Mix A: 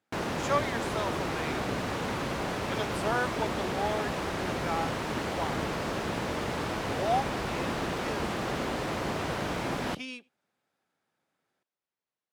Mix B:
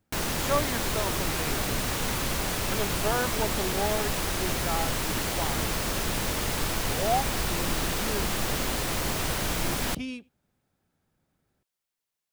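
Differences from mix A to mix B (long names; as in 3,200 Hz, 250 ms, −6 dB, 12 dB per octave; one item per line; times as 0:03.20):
background: add spectral tilt +4.5 dB per octave
master: remove meter weighting curve A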